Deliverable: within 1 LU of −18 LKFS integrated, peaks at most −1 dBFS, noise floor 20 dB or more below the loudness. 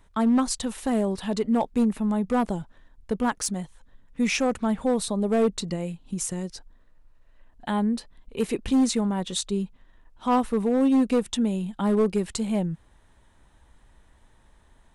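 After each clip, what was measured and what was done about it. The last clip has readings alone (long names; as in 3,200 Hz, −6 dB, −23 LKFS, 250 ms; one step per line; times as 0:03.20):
share of clipped samples 1.1%; peaks flattened at −16.0 dBFS; integrated loudness −25.5 LKFS; sample peak −16.0 dBFS; target loudness −18.0 LKFS
→ clipped peaks rebuilt −16 dBFS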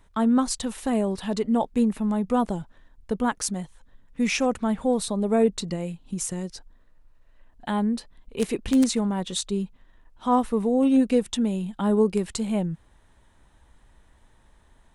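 share of clipped samples 0.0%; integrated loudness −25.0 LKFS; sample peak −7.0 dBFS; target loudness −18.0 LKFS
→ level +7 dB
brickwall limiter −1 dBFS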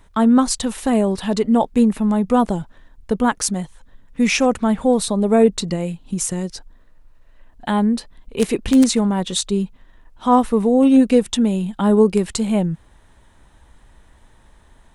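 integrated loudness −18.0 LKFS; sample peak −1.0 dBFS; background noise floor −51 dBFS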